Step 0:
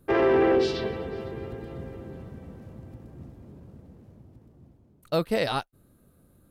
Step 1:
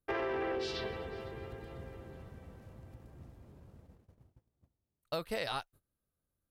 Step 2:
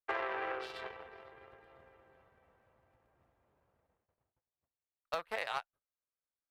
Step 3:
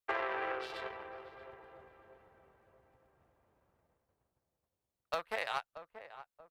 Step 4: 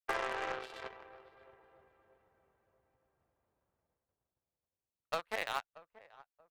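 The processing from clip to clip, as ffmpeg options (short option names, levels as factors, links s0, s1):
-af "agate=range=0.1:threshold=0.00355:ratio=16:detection=peak,equalizer=f=230:t=o:w=2.4:g=-9.5,acompressor=threshold=0.0355:ratio=6,volume=0.708"
-filter_complex "[0:a]aeval=exprs='0.075*(cos(1*acos(clip(val(0)/0.075,-1,1)))-cos(1*PI/2))+0.0237*(cos(3*acos(clip(val(0)/0.075,-1,1)))-cos(3*PI/2))+0.00596*(cos(5*acos(clip(val(0)/0.075,-1,1)))-cos(5*PI/2))+0.00335*(cos(7*acos(clip(val(0)/0.075,-1,1)))-cos(7*PI/2))':c=same,acrossover=split=540 2800:gain=0.126 1 0.158[s0][s1][s2];[s0][s1][s2]amix=inputs=3:normalize=0,volume=53.1,asoftclip=hard,volume=0.0188,volume=3.16"
-filter_complex "[0:a]asplit=2[s0][s1];[s1]adelay=632,lowpass=f=1100:p=1,volume=0.282,asplit=2[s2][s3];[s3]adelay=632,lowpass=f=1100:p=1,volume=0.42,asplit=2[s4][s5];[s5]adelay=632,lowpass=f=1100:p=1,volume=0.42,asplit=2[s6][s7];[s7]adelay=632,lowpass=f=1100:p=1,volume=0.42[s8];[s0][s2][s4][s6][s8]amix=inputs=5:normalize=0,volume=1.12"
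-af "aeval=exprs='0.0668*(cos(1*acos(clip(val(0)/0.0668,-1,1)))-cos(1*PI/2))+0.00237*(cos(4*acos(clip(val(0)/0.0668,-1,1)))-cos(4*PI/2))+0.00188*(cos(5*acos(clip(val(0)/0.0668,-1,1)))-cos(5*PI/2))+0.0075*(cos(7*acos(clip(val(0)/0.0668,-1,1)))-cos(7*PI/2))':c=same"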